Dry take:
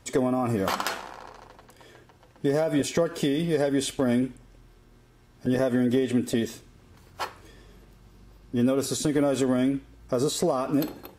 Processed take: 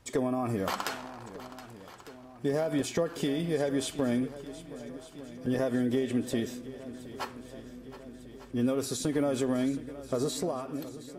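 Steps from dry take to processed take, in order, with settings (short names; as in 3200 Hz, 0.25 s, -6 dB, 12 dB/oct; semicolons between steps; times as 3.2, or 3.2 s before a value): ending faded out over 0.97 s; swung echo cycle 1.2 s, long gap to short 1.5:1, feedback 59%, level -16 dB; gain -5 dB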